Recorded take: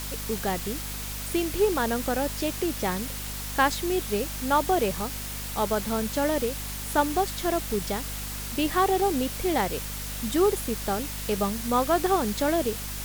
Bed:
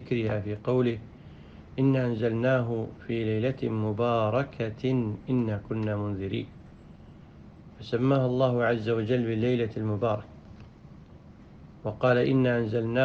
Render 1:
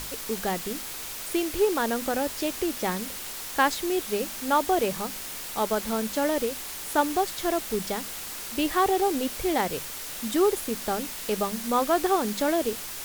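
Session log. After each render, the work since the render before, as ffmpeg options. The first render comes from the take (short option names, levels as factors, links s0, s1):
-af "bandreject=f=50:t=h:w=6,bandreject=f=100:t=h:w=6,bandreject=f=150:t=h:w=6,bandreject=f=200:t=h:w=6,bandreject=f=250:t=h:w=6"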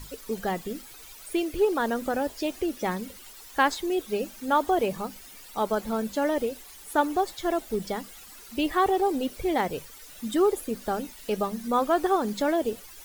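-af "afftdn=nr=14:nf=-37"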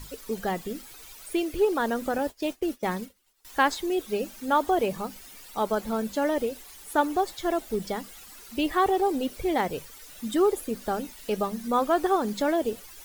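-filter_complex "[0:a]asettb=1/sr,asplit=3[s0][s1][s2];[s0]atrim=end=2.184[s3];[s1]atrim=start=2.18:end=3.45,asetpts=PTS-STARTPTS,afade=t=in:d=0.004:c=qsin,afade=t=out:st=1.266:d=0.004:c=qsin,agate=range=0.0224:threshold=0.0224:ratio=3:release=100:detection=peak[s4];[s2]atrim=start=3.446[s5];[s3][s4]acrossfade=d=0.004:c1=hsin:c2=qsin[s6];[s6][s5]acrossfade=d=0.004:c1=qsin:c2=hsin"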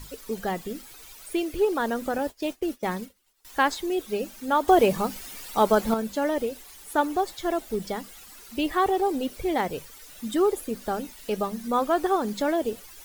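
-filter_complex "[0:a]asplit=3[s0][s1][s2];[s0]atrim=end=4.682[s3];[s1]atrim=start=4.678:end=5.942,asetpts=PTS-STARTPTS,volume=2.11[s4];[s2]atrim=start=5.938[s5];[s3][s4]acrossfade=d=0.004:c1=hsin:c2=hsin[s6];[s6][s5]acrossfade=d=0.004:c1=hsin:c2=hsin"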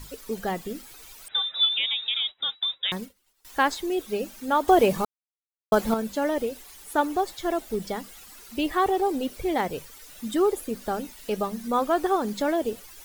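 -filter_complex "[0:a]asettb=1/sr,asplit=3[s0][s1][s2];[s0]atrim=end=1.284[s3];[s1]atrim=start=1.28:end=2.92,asetpts=PTS-STARTPTS,afade=t=in:d=0.004:c=qsin,afade=t=out:st=1.636:d=0.004:c=qsin,lowpass=f=3300:t=q:w=0.5098,lowpass=f=3300:t=q:w=0.6013,lowpass=f=3300:t=q:w=0.9,lowpass=f=3300:t=q:w=2.563,afreqshift=-3900[s4];[s2]atrim=start=2.916[s5];[s3][s4]acrossfade=d=0.004:c1=hsin:c2=qsin[s6];[s6][s5]acrossfade=d=0.004:c1=qsin:c2=hsin,asplit=3[s7][s8][s9];[s7]atrim=end=5.05,asetpts=PTS-STARTPTS,afade=t=out:st=5.046:d=0.004:c=hsin[s10];[s8]atrim=start=5.05:end=5.72,asetpts=PTS-STARTPTS,volume=0[s11];[s9]atrim=start=5.72,asetpts=PTS-STARTPTS,afade=t=in:d=0.004:c=hsin[s12];[s10][s11][s12]concat=n=3:v=0:a=1"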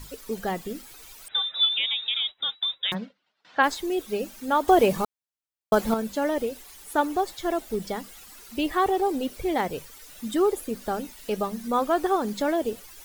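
-filter_complex "[0:a]asplit=3[s0][s1][s2];[s0]afade=t=out:st=2.93:d=0.02[s3];[s1]highpass=f=130:w=0.5412,highpass=f=130:w=1.3066,equalizer=f=180:t=q:w=4:g=4,equalizer=f=380:t=q:w=4:g=-6,equalizer=f=640:t=q:w=4:g=7,equalizer=f=1500:t=q:w=4:g=5,lowpass=f=4200:w=0.5412,lowpass=f=4200:w=1.3066,afade=t=in:st=2.93:d=0.02,afade=t=out:st=3.62:d=0.02[s4];[s2]afade=t=in:st=3.62:d=0.02[s5];[s3][s4][s5]amix=inputs=3:normalize=0"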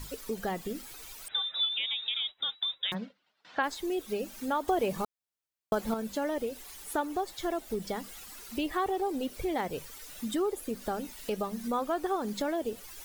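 -af "acompressor=threshold=0.0224:ratio=2"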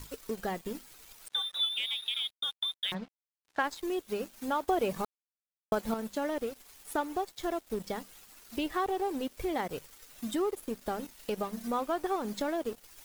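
-af "aeval=exprs='sgn(val(0))*max(abs(val(0))-0.00447,0)':c=same"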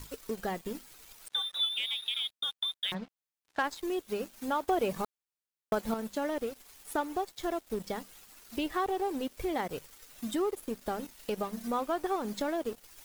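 -af "asoftclip=type=hard:threshold=0.106"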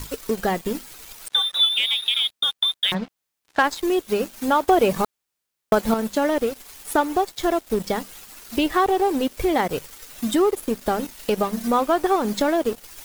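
-af "volume=3.98"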